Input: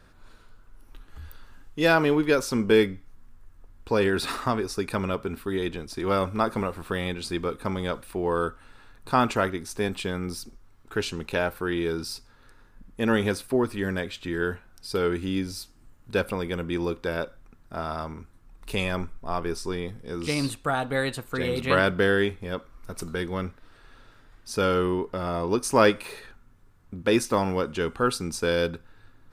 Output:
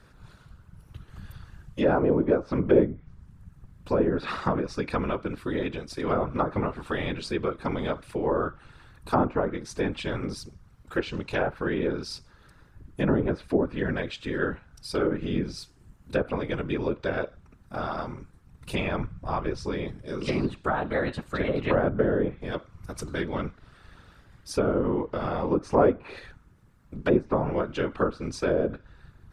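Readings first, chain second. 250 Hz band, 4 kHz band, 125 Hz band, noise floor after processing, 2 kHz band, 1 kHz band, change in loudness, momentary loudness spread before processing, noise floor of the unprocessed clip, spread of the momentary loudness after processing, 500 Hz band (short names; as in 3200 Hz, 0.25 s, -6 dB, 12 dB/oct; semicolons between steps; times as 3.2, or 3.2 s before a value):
0.0 dB, -7.0 dB, +0.5 dB, -57 dBFS, -5.0 dB, -2.0 dB, -1.0 dB, 13 LU, -55 dBFS, 14 LU, -0.5 dB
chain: whisperiser; treble ducked by the level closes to 800 Hz, closed at -19 dBFS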